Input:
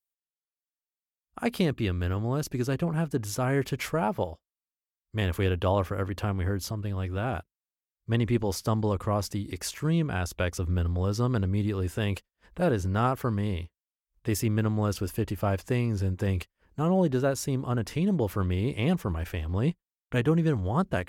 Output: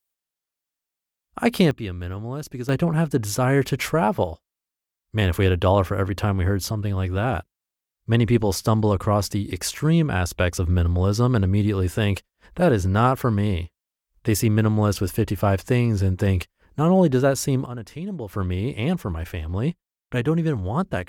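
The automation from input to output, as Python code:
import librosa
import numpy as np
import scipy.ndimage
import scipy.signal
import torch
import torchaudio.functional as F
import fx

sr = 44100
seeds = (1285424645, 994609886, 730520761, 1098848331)

y = fx.gain(x, sr, db=fx.steps((0.0, 8.0), (1.71, -2.0), (2.69, 7.0), (17.66, -5.0), (18.33, 2.5)))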